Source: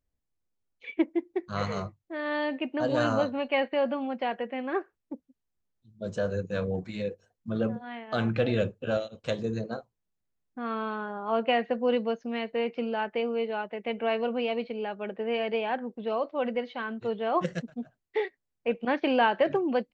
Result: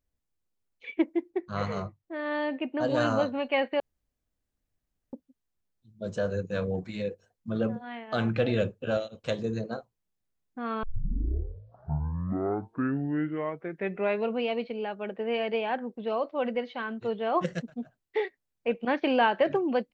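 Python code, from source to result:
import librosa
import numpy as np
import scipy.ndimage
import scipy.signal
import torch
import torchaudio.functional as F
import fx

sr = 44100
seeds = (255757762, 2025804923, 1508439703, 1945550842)

y = fx.high_shelf(x, sr, hz=3200.0, db=-6.5, at=(1.3, 2.81))
y = fx.edit(y, sr, fx.room_tone_fill(start_s=3.8, length_s=1.33),
    fx.tape_start(start_s=10.83, length_s=3.59), tone=tone)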